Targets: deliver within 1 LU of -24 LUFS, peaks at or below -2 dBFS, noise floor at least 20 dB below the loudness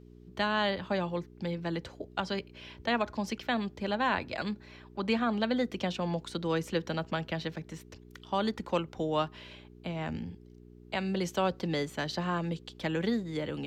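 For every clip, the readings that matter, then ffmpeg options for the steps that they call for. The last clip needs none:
hum 60 Hz; highest harmonic 420 Hz; hum level -52 dBFS; loudness -33.0 LUFS; peak level -17.5 dBFS; loudness target -24.0 LUFS
-> -af "bandreject=f=60:t=h:w=4,bandreject=f=120:t=h:w=4,bandreject=f=180:t=h:w=4,bandreject=f=240:t=h:w=4,bandreject=f=300:t=h:w=4,bandreject=f=360:t=h:w=4,bandreject=f=420:t=h:w=4"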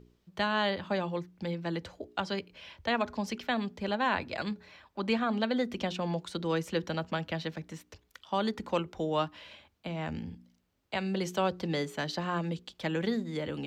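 hum not found; loudness -33.0 LUFS; peak level -17.5 dBFS; loudness target -24.0 LUFS
-> -af "volume=2.82"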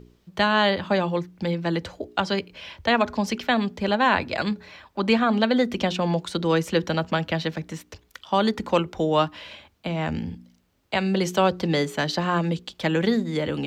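loudness -24.0 LUFS; peak level -8.5 dBFS; noise floor -63 dBFS

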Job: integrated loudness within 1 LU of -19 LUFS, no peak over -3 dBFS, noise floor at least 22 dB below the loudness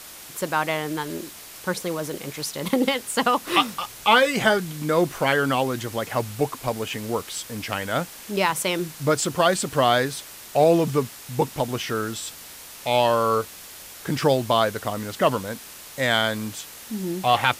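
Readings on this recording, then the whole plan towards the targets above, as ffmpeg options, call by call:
noise floor -42 dBFS; noise floor target -46 dBFS; loudness -23.5 LUFS; peak level -4.5 dBFS; loudness target -19.0 LUFS
-> -af "afftdn=nr=6:nf=-42"
-af "volume=1.68,alimiter=limit=0.708:level=0:latency=1"

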